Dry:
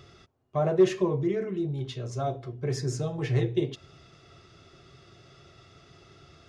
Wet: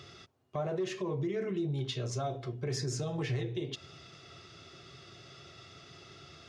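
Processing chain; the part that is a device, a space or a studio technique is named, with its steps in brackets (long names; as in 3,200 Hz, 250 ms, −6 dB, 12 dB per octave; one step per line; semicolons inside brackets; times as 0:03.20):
broadcast voice chain (high-pass filter 80 Hz; de-essing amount 80%; downward compressor 4 to 1, threshold −29 dBFS, peak gain reduction 12.5 dB; parametric band 4,100 Hz +5.5 dB 2.4 octaves; brickwall limiter −26 dBFS, peak gain reduction 6 dB)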